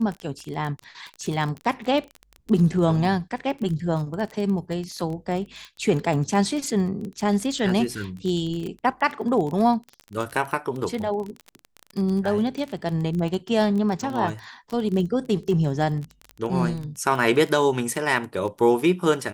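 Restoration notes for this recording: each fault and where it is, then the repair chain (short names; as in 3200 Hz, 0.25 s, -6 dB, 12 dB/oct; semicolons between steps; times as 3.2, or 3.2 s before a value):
crackle 23/s -28 dBFS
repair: de-click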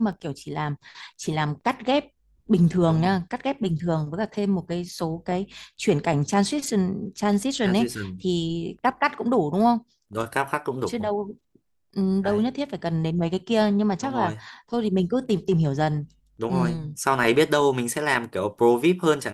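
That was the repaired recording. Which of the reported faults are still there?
none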